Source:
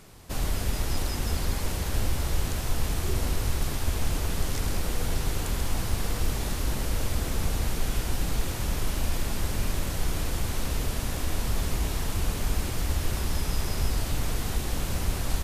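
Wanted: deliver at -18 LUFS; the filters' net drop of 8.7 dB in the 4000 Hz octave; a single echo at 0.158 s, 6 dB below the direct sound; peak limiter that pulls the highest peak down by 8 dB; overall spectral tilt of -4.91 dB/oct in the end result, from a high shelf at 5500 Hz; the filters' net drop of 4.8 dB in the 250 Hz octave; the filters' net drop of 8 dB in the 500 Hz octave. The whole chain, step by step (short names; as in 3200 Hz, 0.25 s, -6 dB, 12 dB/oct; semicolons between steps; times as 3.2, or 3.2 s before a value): bell 250 Hz -4.5 dB; bell 500 Hz -9 dB; bell 4000 Hz -7.5 dB; high shelf 5500 Hz -9 dB; limiter -21.5 dBFS; echo 0.158 s -6 dB; gain +16 dB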